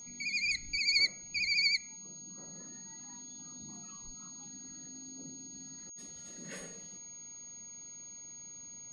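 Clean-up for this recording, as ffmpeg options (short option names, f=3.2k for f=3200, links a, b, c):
-af "bandreject=f=6.6k:w=30"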